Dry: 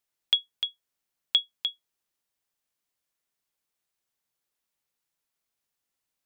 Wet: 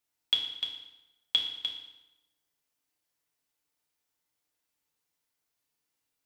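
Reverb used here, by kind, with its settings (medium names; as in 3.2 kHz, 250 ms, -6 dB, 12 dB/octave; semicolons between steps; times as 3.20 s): FDN reverb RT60 0.96 s, low-frequency decay 1×, high-frequency decay 0.85×, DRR -1.5 dB; trim -2.5 dB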